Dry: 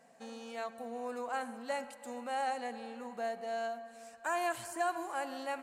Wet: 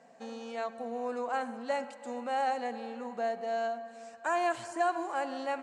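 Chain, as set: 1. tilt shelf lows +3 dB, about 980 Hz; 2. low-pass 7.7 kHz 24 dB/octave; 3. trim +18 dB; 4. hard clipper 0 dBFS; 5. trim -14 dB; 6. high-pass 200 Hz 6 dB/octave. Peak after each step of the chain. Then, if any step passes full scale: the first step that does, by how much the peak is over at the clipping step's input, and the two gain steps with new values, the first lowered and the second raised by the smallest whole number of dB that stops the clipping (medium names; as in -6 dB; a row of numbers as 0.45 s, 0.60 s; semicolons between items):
-22.5 dBFS, -22.5 dBFS, -4.5 dBFS, -4.5 dBFS, -18.5 dBFS, -19.0 dBFS; nothing clips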